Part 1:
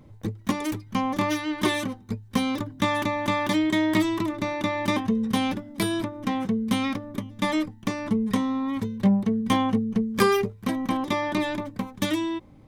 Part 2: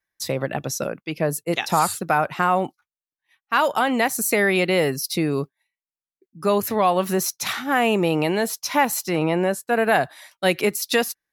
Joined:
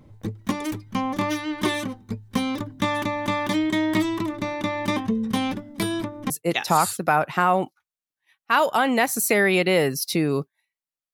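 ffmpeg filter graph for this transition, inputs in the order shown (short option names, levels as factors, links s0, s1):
-filter_complex "[0:a]apad=whole_dur=11.13,atrim=end=11.13,atrim=end=6.302[s0];[1:a]atrim=start=1.318:end=6.15[s1];[s0][s1]acrossfade=d=0.004:c1=hsin:c2=hsin"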